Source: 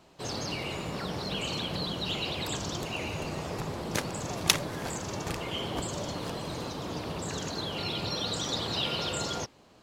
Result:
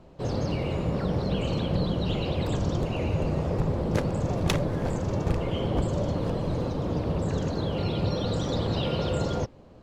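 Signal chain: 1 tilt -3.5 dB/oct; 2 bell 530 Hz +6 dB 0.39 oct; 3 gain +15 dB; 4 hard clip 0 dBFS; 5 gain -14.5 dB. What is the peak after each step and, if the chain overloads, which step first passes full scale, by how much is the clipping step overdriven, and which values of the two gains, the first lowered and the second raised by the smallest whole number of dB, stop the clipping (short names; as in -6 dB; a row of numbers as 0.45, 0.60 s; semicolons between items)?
-7.5, -8.0, +7.0, 0.0, -14.5 dBFS; step 3, 7.0 dB; step 3 +8 dB, step 5 -7.5 dB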